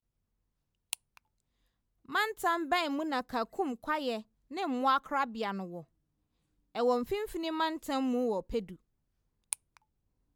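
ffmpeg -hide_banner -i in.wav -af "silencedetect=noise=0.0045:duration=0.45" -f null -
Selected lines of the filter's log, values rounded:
silence_start: 0.00
silence_end: 0.93 | silence_duration: 0.93
silence_start: 1.17
silence_end: 2.09 | silence_duration: 0.91
silence_start: 5.82
silence_end: 6.75 | silence_duration: 0.93
silence_start: 8.75
silence_end: 9.52 | silence_duration: 0.77
silence_start: 9.77
silence_end: 10.36 | silence_duration: 0.59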